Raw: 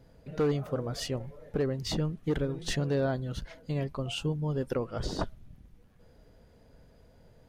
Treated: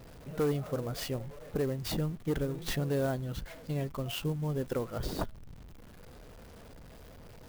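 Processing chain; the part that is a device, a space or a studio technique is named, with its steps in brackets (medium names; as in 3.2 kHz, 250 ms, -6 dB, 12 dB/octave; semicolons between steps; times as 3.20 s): early CD player with a faulty converter (jump at every zero crossing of -45 dBFS; sampling jitter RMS 0.027 ms); trim -2.5 dB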